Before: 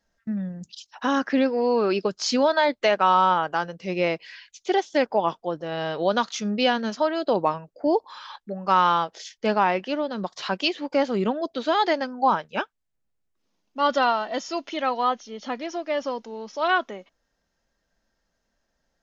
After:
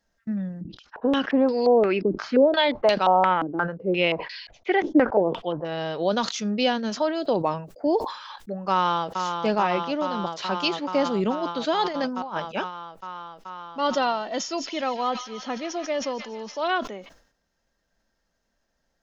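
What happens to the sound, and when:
0:00.61–0:05.65: low-pass on a step sequencer 5.7 Hz 320–4,500 Hz
0:08.72–0:09.19: delay throw 430 ms, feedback 85%, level −5.5 dB
0:11.85–0:12.40: compressor whose output falls as the input rises −26 dBFS, ratio −0.5
0:14.43–0:16.61: delay with a high-pass on its return 148 ms, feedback 69%, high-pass 2,000 Hz, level −9 dB
whole clip: dynamic equaliser 1,400 Hz, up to −5 dB, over −32 dBFS, Q 0.82; level that may fall only so fast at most 100 dB per second

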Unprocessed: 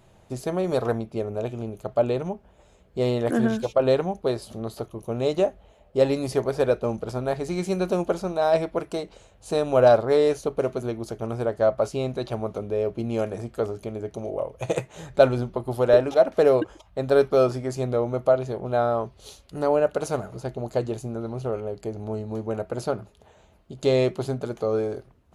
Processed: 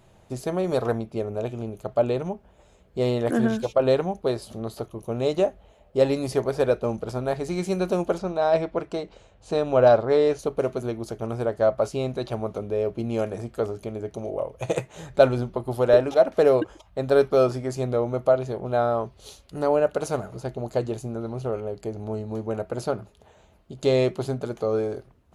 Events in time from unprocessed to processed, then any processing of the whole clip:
0:08.18–0:10.39: high-frequency loss of the air 76 metres

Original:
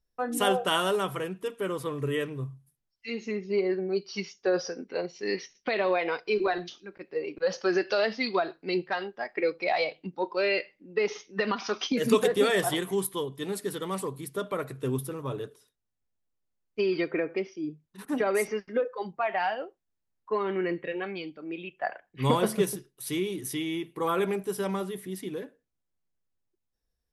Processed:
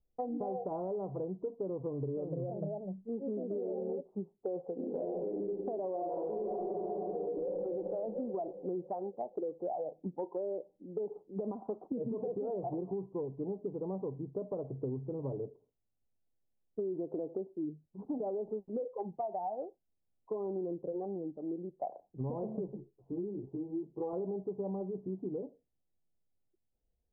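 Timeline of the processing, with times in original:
0:01.82–0:04.14: delay with pitch and tempo change per echo 328 ms, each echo +3 semitones, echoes 2
0:04.75–0:05.40: thrown reverb, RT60 1.2 s, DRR −7 dB
0:05.92–0:07.61: thrown reverb, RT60 2.6 s, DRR −6.5 dB
0:22.67–0:24.13: string-ensemble chorus
whole clip: Butterworth low-pass 830 Hz 48 dB per octave; brickwall limiter −22.5 dBFS; downward compressor, threshold −35 dBFS; level +1 dB

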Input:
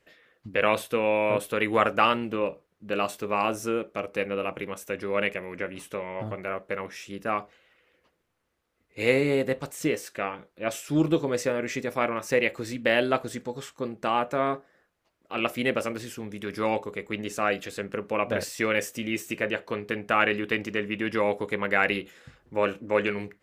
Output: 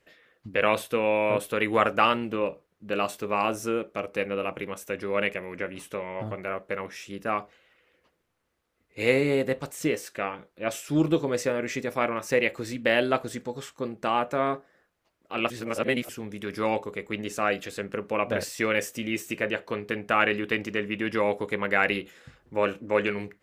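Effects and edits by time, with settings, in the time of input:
0:15.50–0:16.09: reverse

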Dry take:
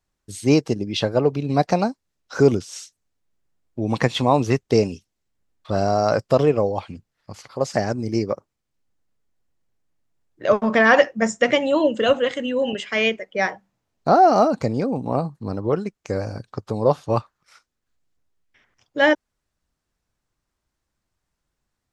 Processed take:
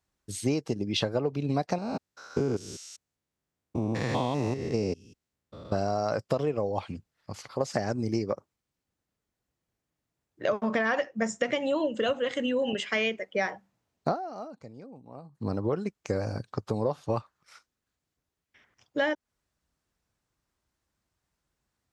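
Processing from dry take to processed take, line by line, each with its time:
0:01.78–0:05.72: spectrum averaged block by block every 200 ms
0:14.11–0:15.41: duck −22 dB, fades 0.47 s exponential
whole clip: downward compressor 12 to 1, threshold −22 dBFS; high-pass filter 45 Hz; level −1.5 dB

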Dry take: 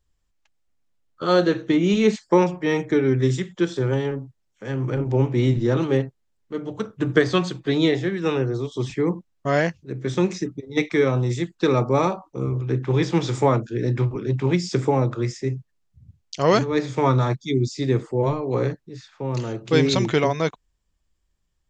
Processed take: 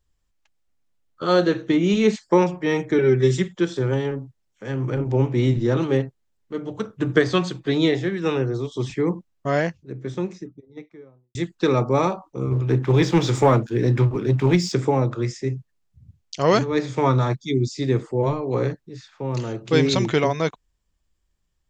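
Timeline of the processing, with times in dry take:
0:02.98–0:03.48: comb filter 5.3 ms, depth 88%
0:09.13–0:11.35: fade out and dull
0:12.51–0:14.72: leveller curve on the samples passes 1

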